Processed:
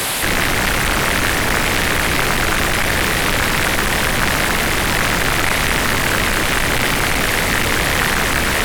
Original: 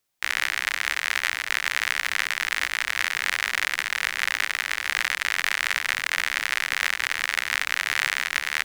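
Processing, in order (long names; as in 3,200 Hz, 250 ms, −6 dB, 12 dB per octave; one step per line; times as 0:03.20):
linear delta modulator 64 kbit/s, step −13.5 dBFS
parametric band 6,100 Hz −12 dB 0.6 octaves
highs frequency-modulated by the lows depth 0.96 ms
level +4 dB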